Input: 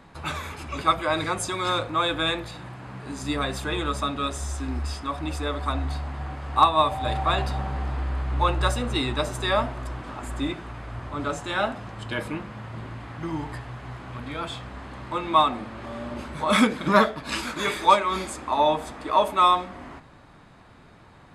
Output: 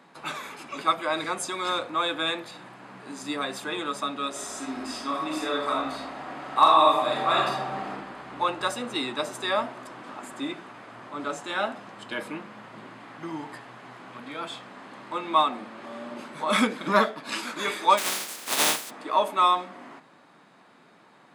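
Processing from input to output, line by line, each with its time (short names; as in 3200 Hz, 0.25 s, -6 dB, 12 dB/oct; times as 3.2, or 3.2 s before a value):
4.3–7.9 reverb throw, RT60 0.85 s, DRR -3 dB
17.97–18.89 spectral contrast lowered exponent 0.17
whole clip: HPF 180 Hz 24 dB/oct; low shelf 370 Hz -3 dB; gain -2 dB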